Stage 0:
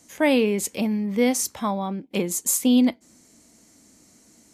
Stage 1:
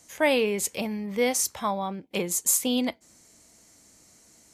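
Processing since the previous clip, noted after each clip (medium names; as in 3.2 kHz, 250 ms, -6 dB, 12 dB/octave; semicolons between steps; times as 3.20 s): peaking EQ 250 Hz -9.5 dB 1 oct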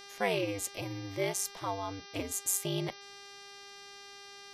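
ring modulator 97 Hz; mains buzz 400 Hz, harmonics 15, -45 dBFS -1 dB/octave; trim -5.5 dB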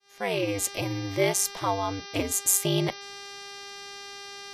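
fade-in on the opening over 0.63 s; trim +8.5 dB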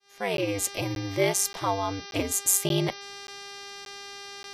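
crackling interface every 0.58 s, samples 512, zero, from 0.37 s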